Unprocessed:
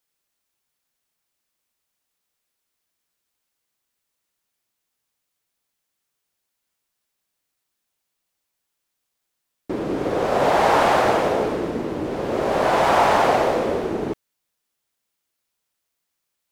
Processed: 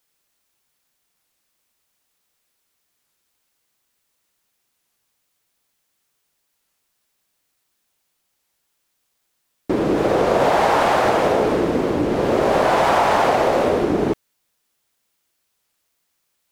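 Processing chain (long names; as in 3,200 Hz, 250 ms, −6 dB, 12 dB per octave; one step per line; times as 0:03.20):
downward compressor, threshold −20 dBFS, peak gain reduction 8 dB
wow of a warped record 33 1/3 rpm, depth 160 cents
level +7 dB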